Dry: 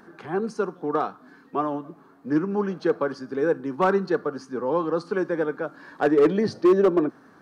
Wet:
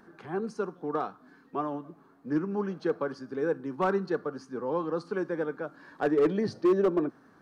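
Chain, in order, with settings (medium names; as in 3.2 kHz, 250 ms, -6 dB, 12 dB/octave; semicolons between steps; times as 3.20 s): bass shelf 110 Hz +6 dB; trim -6.5 dB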